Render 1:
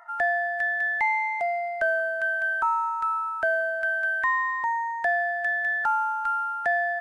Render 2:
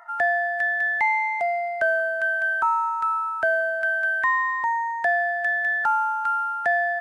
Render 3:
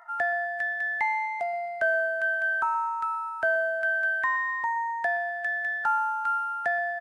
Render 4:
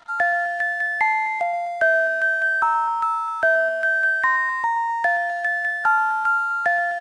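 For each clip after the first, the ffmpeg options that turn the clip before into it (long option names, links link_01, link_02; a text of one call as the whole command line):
ffmpeg -i in.wav -af "highpass=49,volume=2.5dB" out.wav
ffmpeg -i in.wav -filter_complex "[0:a]asplit=2[link_01][link_02];[link_02]adelay=18,volume=-13dB[link_03];[link_01][link_03]amix=inputs=2:normalize=0,asplit=2[link_04][link_05];[link_05]adelay=124,lowpass=frequency=2000:poles=1,volume=-14dB,asplit=2[link_06][link_07];[link_07]adelay=124,lowpass=frequency=2000:poles=1,volume=0.38,asplit=2[link_08][link_09];[link_09]adelay=124,lowpass=frequency=2000:poles=1,volume=0.38,asplit=2[link_10][link_11];[link_11]adelay=124,lowpass=frequency=2000:poles=1,volume=0.38[link_12];[link_04][link_06][link_08][link_10][link_12]amix=inputs=5:normalize=0,volume=-4dB" out.wav
ffmpeg -i in.wav -af "aeval=exprs='sgn(val(0))*max(abs(val(0))-0.00188,0)':channel_layout=same,aecho=1:1:256:0.15,aresample=22050,aresample=44100,volume=7dB" out.wav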